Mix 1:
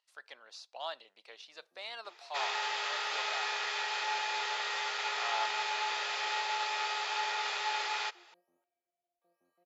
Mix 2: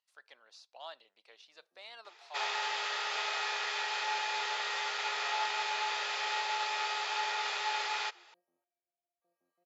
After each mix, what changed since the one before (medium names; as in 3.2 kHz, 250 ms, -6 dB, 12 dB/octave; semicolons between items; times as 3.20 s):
speech -6.5 dB; first sound -6.0 dB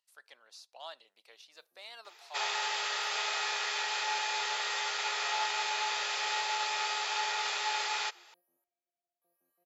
master: remove distance through air 86 m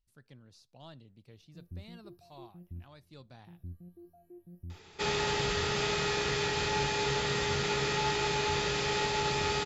speech -9.0 dB; second sound: entry +2.65 s; master: remove high-pass 660 Hz 24 dB/octave